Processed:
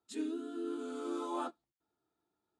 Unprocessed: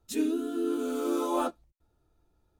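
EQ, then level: speaker cabinet 260–8400 Hz, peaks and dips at 540 Hz -9 dB, 2500 Hz -4 dB, 5900 Hz -8 dB; -7.0 dB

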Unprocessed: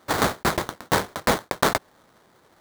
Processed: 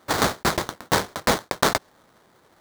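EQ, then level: dynamic EQ 5300 Hz, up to +4 dB, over -40 dBFS, Q 0.98; 0.0 dB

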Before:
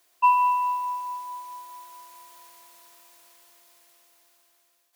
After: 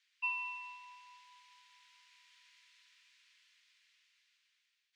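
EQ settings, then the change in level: inverse Chebyshev high-pass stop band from 590 Hz, stop band 60 dB; LPF 2900 Hz 6 dB/oct; air absorption 130 m; +2.0 dB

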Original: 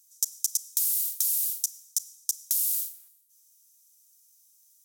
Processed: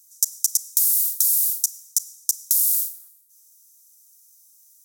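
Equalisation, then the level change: fixed phaser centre 490 Hz, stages 8; +7.5 dB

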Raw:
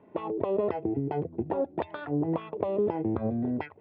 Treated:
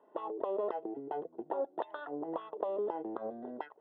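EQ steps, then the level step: running mean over 19 samples; HPF 380 Hz 12 dB/oct; tilt +4 dB/oct; 0.0 dB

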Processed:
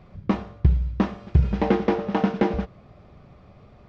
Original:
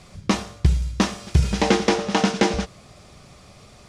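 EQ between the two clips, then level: tape spacing loss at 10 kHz 43 dB; 0.0 dB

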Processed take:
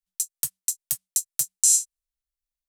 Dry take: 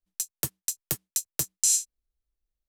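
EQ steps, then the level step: elliptic band-stop 180–550 Hz; high shelf 2200 Hz +12 dB; dynamic EQ 8900 Hz, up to +6 dB, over -34 dBFS, Q 1.2; -11.0 dB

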